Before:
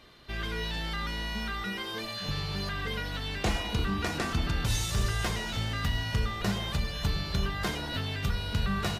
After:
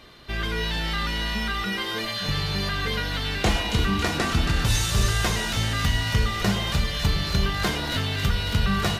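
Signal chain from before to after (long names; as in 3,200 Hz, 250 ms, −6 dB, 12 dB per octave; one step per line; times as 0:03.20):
delay with a high-pass on its return 275 ms, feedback 68%, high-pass 1,800 Hz, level −6 dB
level +6.5 dB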